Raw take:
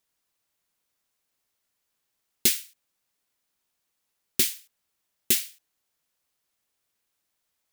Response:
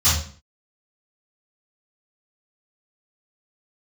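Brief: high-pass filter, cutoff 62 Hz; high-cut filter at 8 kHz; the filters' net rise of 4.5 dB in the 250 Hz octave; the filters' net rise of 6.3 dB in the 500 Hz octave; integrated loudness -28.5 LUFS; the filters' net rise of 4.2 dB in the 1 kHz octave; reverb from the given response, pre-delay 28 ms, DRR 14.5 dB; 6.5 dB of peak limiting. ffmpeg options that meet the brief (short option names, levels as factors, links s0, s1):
-filter_complex "[0:a]highpass=62,lowpass=8000,equalizer=f=250:t=o:g=3,equalizer=f=500:t=o:g=7.5,equalizer=f=1000:t=o:g=3.5,alimiter=limit=0.188:level=0:latency=1,asplit=2[s0][s1];[1:a]atrim=start_sample=2205,adelay=28[s2];[s1][s2]afir=irnorm=-1:irlink=0,volume=0.0251[s3];[s0][s3]amix=inputs=2:normalize=0,volume=1.5"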